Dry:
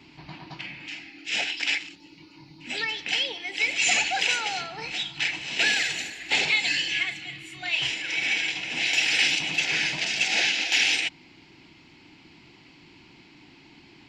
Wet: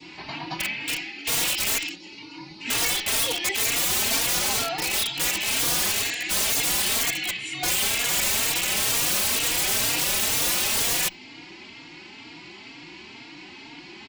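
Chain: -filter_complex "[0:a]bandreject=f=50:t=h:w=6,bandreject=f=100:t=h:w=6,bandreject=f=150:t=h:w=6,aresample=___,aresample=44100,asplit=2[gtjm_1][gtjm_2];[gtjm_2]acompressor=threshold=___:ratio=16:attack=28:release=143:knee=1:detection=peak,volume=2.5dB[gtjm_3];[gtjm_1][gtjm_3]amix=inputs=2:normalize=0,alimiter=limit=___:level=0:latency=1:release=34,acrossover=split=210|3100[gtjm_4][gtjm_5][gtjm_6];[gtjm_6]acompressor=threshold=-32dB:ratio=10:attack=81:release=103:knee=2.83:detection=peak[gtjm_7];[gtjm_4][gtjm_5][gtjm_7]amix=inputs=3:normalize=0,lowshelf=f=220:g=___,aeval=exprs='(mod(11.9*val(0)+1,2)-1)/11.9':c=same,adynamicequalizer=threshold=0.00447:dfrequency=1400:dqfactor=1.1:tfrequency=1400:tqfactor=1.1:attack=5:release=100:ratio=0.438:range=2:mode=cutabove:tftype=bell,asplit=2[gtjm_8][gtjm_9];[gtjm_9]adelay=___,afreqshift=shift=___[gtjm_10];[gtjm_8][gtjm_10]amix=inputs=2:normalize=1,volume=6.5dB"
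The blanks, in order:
22050, -33dB, -11.5dB, -10.5, 3.7, 2.1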